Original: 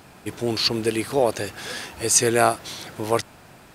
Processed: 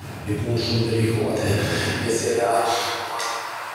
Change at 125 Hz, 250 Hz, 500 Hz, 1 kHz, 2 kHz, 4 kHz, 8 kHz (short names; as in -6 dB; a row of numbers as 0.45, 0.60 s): +9.0, +2.5, +0.5, +1.5, +2.5, -0.5, -7.5 dB